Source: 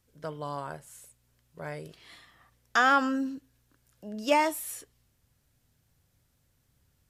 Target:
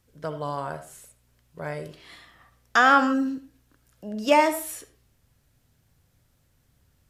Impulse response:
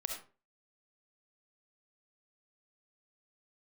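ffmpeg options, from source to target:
-filter_complex "[0:a]asplit=2[link_01][link_02];[1:a]atrim=start_sample=2205,highshelf=frequency=5000:gain=-11.5[link_03];[link_02][link_03]afir=irnorm=-1:irlink=0,volume=-3dB[link_04];[link_01][link_04]amix=inputs=2:normalize=0,volume=1dB"

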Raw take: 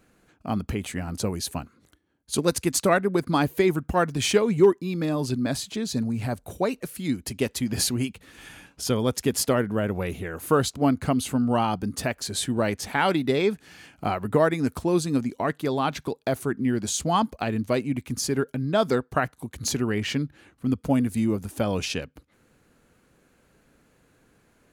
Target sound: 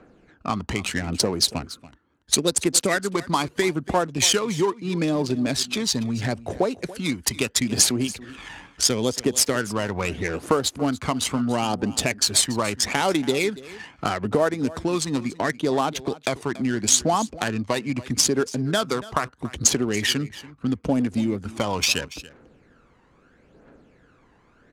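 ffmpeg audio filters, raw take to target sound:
ffmpeg -i in.wav -filter_complex "[0:a]aphaser=in_gain=1:out_gain=1:delay=1.1:decay=0.57:speed=0.76:type=triangular,acrossover=split=130[link_01][link_02];[link_01]asoftclip=type=tanh:threshold=-28dB[link_03];[link_02]adynamicsmooth=sensitivity=5.5:basefreq=1700[link_04];[link_03][link_04]amix=inputs=2:normalize=0,lowpass=8600,bass=frequency=250:gain=-9,treble=frequency=4000:gain=4,acompressor=threshold=-30dB:ratio=3,aemphasis=mode=production:type=50kf,aecho=1:1:284:0.126,volume=8dB" -ar 48000 -c:a aac -b:a 128k out.aac

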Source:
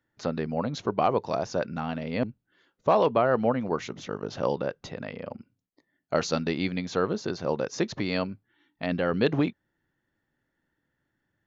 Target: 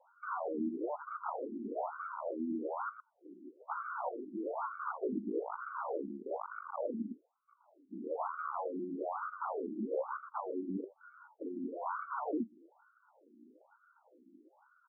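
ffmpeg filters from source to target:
ffmpeg -i in.wav -filter_complex "[0:a]adynamicequalizer=threshold=0.00316:dfrequency=2300:dqfactor=4.2:tfrequency=2300:tqfactor=4.2:attack=5:release=100:ratio=0.375:range=2:mode=cutabove:tftype=bell,acrossover=split=3000[link_01][link_02];[link_01]acontrast=54[link_03];[link_03][link_02]amix=inputs=2:normalize=0,lowshelf=frequency=130:gain=3.5,asplit=2[link_04][link_05];[link_05]aecho=0:1:85:0.126[link_06];[link_04][link_06]amix=inputs=2:normalize=0,atempo=0.77,aeval=exprs='(mod(11.9*val(0)+1,2)-1)/11.9':channel_layout=same,alimiter=level_in=7dB:limit=-24dB:level=0:latency=1:release=60,volume=-7dB,aresample=8000,aresample=44100,aeval=exprs='0.0133*(abs(mod(val(0)/0.0133+3,4)-2)-1)':channel_layout=same,acompressor=threshold=-50dB:ratio=2,asuperstop=centerf=1900:order=12:qfactor=2,afftfilt=real='re*between(b*sr/1024,250*pow(1600/250,0.5+0.5*sin(2*PI*1.1*pts/sr))/1.41,250*pow(1600/250,0.5+0.5*sin(2*PI*1.1*pts/sr))*1.41)':imag='im*between(b*sr/1024,250*pow(1600/250,0.5+0.5*sin(2*PI*1.1*pts/sr))/1.41,250*pow(1600/250,0.5+0.5*sin(2*PI*1.1*pts/sr))*1.41)':win_size=1024:overlap=0.75,volume=17.5dB" out.wav

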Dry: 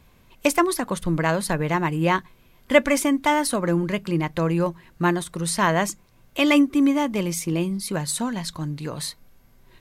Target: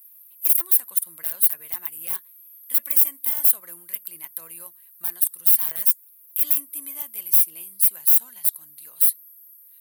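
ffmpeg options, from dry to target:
ffmpeg -i in.wav -af "aderivative,aeval=exprs='(mod(21.1*val(0)+1,2)-1)/21.1':channel_layout=same,aexciter=amount=15.3:drive=6.3:freq=9600,volume=-6dB" out.wav

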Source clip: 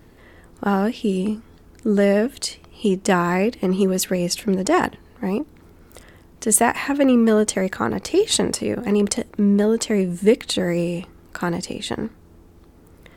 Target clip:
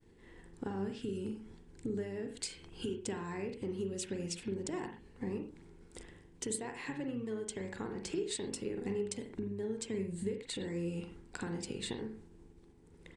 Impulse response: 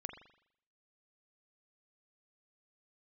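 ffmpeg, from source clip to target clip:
-filter_complex "[0:a]aresample=22050,aresample=44100,agate=range=-33dB:threshold=-42dB:ratio=3:detection=peak,acompressor=threshold=-30dB:ratio=20,asplit=2[link_01][link_02];[link_02]asetrate=22050,aresample=44100,atempo=2,volume=-12dB[link_03];[link_01][link_03]amix=inputs=2:normalize=0,equalizer=frequency=400:width_type=o:width=0.33:gain=6,equalizer=frequency=630:width_type=o:width=0.33:gain=-10,equalizer=frequency=1250:width_type=o:width=0.33:gain=-9,equalizer=frequency=8000:width_type=o:width=0.33:gain=4[link_04];[1:a]atrim=start_sample=2205,atrim=end_sample=6174[link_05];[link_04][link_05]afir=irnorm=-1:irlink=0,volume=-3dB"

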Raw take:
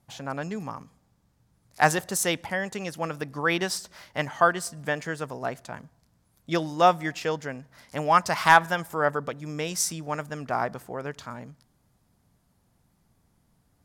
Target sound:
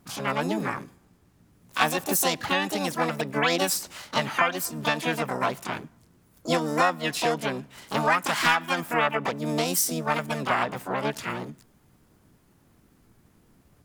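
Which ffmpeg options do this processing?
ffmpeg -i in.wav -filter_complex "[0:a]acompressor=threshold=-27dB:ratio=4,asplit=3[link_01][link_02][link_03];[link_02]asetrate=66075,aresample=44100,atempo=0.66742,volume=0dB[link_04];[link_03]asetrate=88200,aresample=44100,atempo=0.5,volume=-4dB[link_05];[link_01][link_04][link_05]amix=inputs=3:normalize=0,volume=3dB" out.wav

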